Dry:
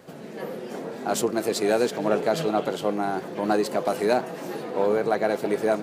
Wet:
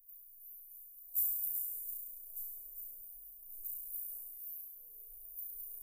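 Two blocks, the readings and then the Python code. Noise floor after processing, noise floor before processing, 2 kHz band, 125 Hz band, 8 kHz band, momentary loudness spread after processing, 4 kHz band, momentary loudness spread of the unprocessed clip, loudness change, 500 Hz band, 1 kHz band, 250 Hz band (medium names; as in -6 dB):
-56 dBFS, -39 dBFS, under -40 dB, under -40 dB, -11.5 dB, 17 LU, under -40 dB, 11 LU, -14.0 dB, under -40 dB, under -40 dB, under -40 dB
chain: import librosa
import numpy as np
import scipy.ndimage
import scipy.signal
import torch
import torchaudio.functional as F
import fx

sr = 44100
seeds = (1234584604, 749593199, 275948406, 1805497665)

p1 = scipy.signal.sosfilt(scipy.signal.cheby2(4, 80, [110.0, 4000.0], 'bandstop', fs=sr, output='sos'), x)
p2 = fx.peak_eq(p1, sr, hz=290.0, db=10.0, octaves=1.4)
p3 = p2 + fx.room_flutter(p2, sr, wall_m=5.9, rt60_s=1.4, dry=0)
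y = p3 * 10.0 ** (14.5 / 20.0)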